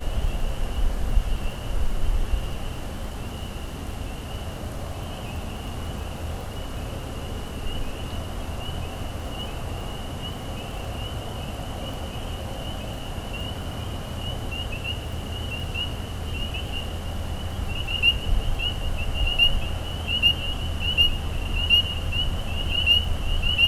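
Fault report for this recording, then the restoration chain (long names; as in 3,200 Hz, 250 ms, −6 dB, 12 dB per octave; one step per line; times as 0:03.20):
surface crackle 21 per second −34 dBFS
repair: click removal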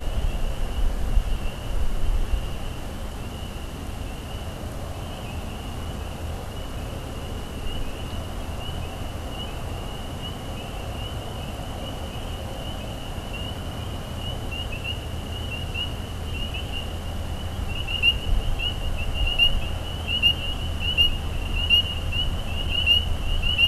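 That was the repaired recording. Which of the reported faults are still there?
none of them is left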